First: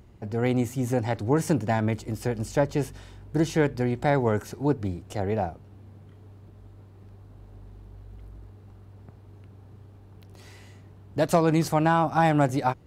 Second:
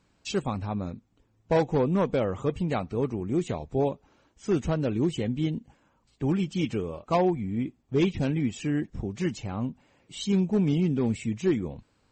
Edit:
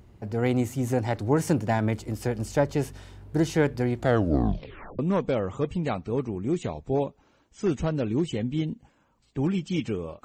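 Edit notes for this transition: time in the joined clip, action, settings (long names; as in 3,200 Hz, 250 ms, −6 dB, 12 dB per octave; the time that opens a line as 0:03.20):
first
0:03.96: tape stop 1.03 s
0:04.99: continue with second from 0:01.84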